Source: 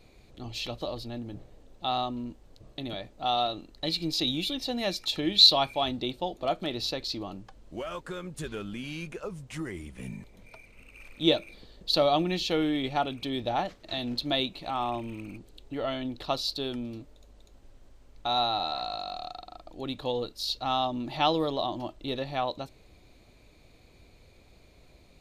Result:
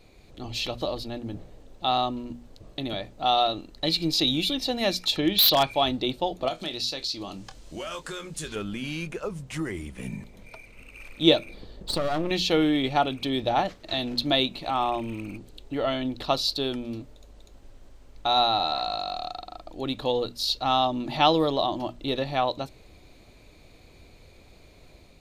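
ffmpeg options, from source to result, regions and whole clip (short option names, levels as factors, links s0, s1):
-filter_complex "[0:a]asettb=1/sr,asplit=3[s0][s1][s2];[s0]atrim=end=5.174[s3];[s1]atrim=start=5.17:end=5.71,asetpts=PTS-STARTPTS,afade=t=in:d=0.004:c=qsin,afade=t=out:st=0.536:d=0.004:c=qsin,lowpass=6600,aeval=exprs='0.126*(abs(mod(val(0)/0.126+3,4)-2)-1)':c=same[s4];[s2]atrim=start=5.706[s5];[s3][s4]acrossfade=d=0.004:c1=hsin:c2=qsin[s6];[s6][s5]acrossfade=d=0.004:c1=qsin:c2=hsin,asettb=1/sr,asplit=3[s7][s8][s9];[s7]atrim=end=6.484[s10];[s8]atrim=start=6.48:end=8.56,asetpts=PTS-STARTPTS,afade=t=in:d=0.004:c=qsin,afade=t=out:st=2.076:d=0.004:c=qsin,equalizer=f=6500:t=o:w=2.7:g=12,acompressor=threshold=0.00891:ratio=2:attack=3.2:release=140:knee=1:detection=peak,asplit=2[s11][s12];[s12]adelay=25,volume=0.299[s13];[s11][s13]amix=inputs=2:normalize=0,atrim=end_sample=91728[s14];[s9]atrim=start=8.556[s15];[s10][s14]acrossfade=d=0.004:c1=hsin:c2=qsin[s16];[s16][s15]acrossfade=d=0.004:c1=qsin:c2=hsin,asettb=1/sr,asplit=3[s17][s18][s19];[s17]atrim=end=11.454[s20];[s18]atrim=start=11.45:end=12.31,asetpts=PTS-STARTPTS,afade=t=in:d=0.004:c=qsin,afade=t=out:st=0.856:d=0.004:c=qsin,tiltshelf=f=1300:g=4,acompressor=threshold=0.0562:ratio=6:attack=3.2:release=140:knee=1:detection=peak,aeval=exprs='clip(val(0),-1,0.0106)':c=same[s21];[s19]atrim=start=12.306[s22];[s20][s21]acrossfade=d=0.004:c1=hsin:c2=qsin[s23];[s23][s22]acrossfade=d=0.004:c1=qsin:c2=hsin,bandreject=f=60:t=h:w=6,bandreject=f=120:t=h:w=6,bandreject=f=180:t=h:w=6,bandreject=f=240:t=h:w=6,dynaudnorm=f=110:g=5:m=1.41,volume=1.26"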